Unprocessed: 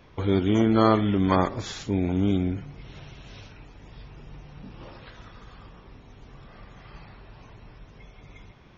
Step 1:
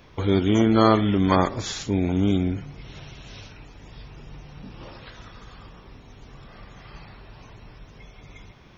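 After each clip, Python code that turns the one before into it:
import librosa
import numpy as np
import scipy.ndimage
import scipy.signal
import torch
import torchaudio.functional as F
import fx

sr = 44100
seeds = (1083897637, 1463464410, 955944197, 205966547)

y = fx.high_shelf(x, sr, hz=4600.0, db=7.5)
y = F.gain(torch.from_numpy(y), 2.0).numpy()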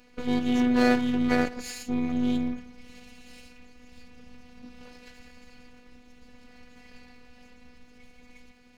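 y = fx.lower_of_two(x, sr, delay_ms=0.43)
y = fx.robotise(y, sr, hz=246.0)
y = F.gain(torch.from_numpy(y), -2.5).numpy()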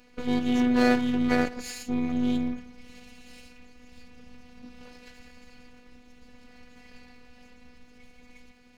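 y = x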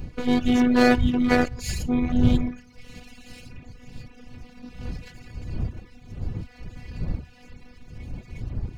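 y = fx.dmg_wind(x, sr, seeds[0], corner_hz=100.0, level_db=-35.0)
y = fx.dereverb_blind(y, sr, rt60_s=0.67)
y = F.gain(torch.from_numpy(y), 5.5).numpy()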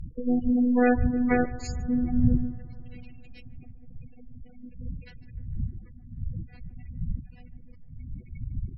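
y = fx.spec_gate(x, sr, threshold_db=-15, keep='strong')
y = fx.echo_bbd(y, sr, ms=151, stages=2048, feedback_pct=74, wet_db=-18)
y = fx.env_lowpass_down(y, sr, base_hz=2900.0, full_db=-16.0)
y = F.gain(torch.from_numpy(y), -2.5).numpy()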